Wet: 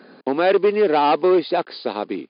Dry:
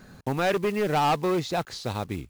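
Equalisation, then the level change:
high-pass filter 240 Hz 24 dB per octave
linear-phase brick-wall low-pass 5,000 Hz
parametric band 390 Hz +7 dB 1.6 octaves
+3.5 dB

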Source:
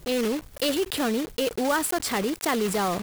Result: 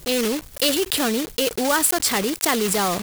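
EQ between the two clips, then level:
high-shelf EQ 2,700 Hz +8 dB
+2.5 dB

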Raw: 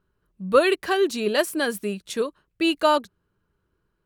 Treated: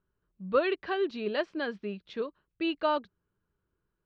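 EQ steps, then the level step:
low-pass filter 4,500 Hz 24 dB per octave
high-frequency loss of the air 120 metres
−8.0 dB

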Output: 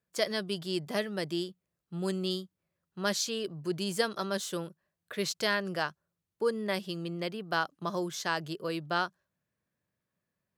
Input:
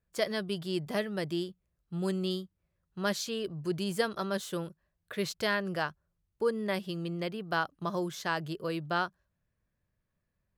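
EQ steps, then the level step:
high-pass filter 150 Hz 12 dB per octave
dynamic equaliser 6,200 Hz, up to +6 dB, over −51 dBFS, Q 0.82
0.0 dB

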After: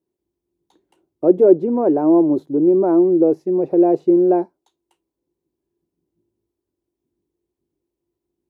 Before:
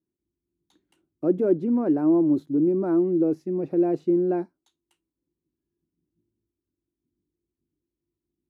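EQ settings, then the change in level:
flat-topped bell 610 Hz +10.5 dB
+1.5 dB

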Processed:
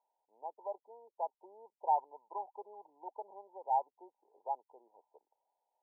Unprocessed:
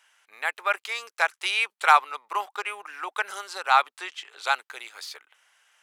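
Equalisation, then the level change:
linear-phase brick-wall low-pass 1,000 Hz
high-frequency loss of the air 480 metres
low-shelf EQ 430 Hz −6 dB
−4.5 dB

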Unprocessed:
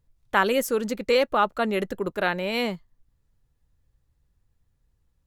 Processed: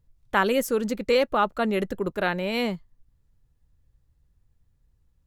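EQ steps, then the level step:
low-shelf EQ 270 Hz +5.5 dB
−1.5 dB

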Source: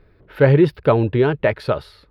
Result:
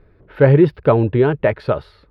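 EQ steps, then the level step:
low-pass filter 1,900 Hz 6 dB per octave
+2.0 dB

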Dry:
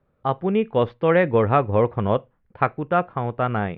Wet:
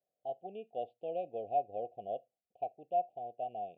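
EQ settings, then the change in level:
formant filter a
Chebyshev band-stop filter 730–2,800 Hz, order 4
−6.5 dB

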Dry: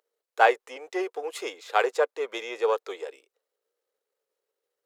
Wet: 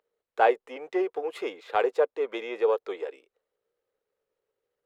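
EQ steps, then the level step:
dynamic equaliser 1,600 Hz, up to −7 dB, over −37 dBFS, Q 0.71
dynamic equaliser 6,400 Hz, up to −5 dB, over −56 dBFS, Q 1.4
bass and treble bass +13 dB, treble −12 dB
+1.0 dB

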